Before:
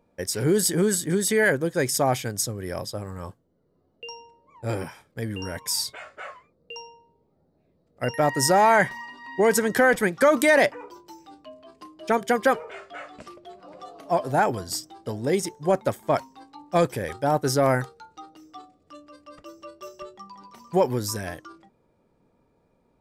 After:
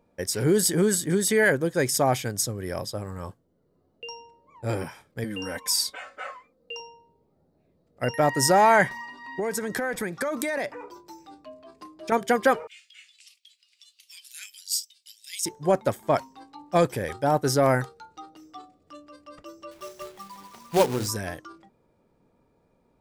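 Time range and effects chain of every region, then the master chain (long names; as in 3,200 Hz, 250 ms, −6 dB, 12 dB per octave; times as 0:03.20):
0:05.24–0:06.80: low-shelf EQ 220 Hz −7 dB + comb filter 3.9 ms, depth 70%
0:08.90–0:12.12: notch filter 3,000 Hz, Q 9.7 + downward compressor, threshold −25 dBFS
0:12.67–0:15.46: Butterworth high-pass 2,500 Hz + high-shelf EQ 4,600 Hz +5 dB
0:19.71–0:21.08: low-pass filter 10,000 Hz 24 dB per octave + mains-hum notches 60/120/180/240/300/360/420/480 Hz + log-companded quantiser 4 bits
whole clip: no processing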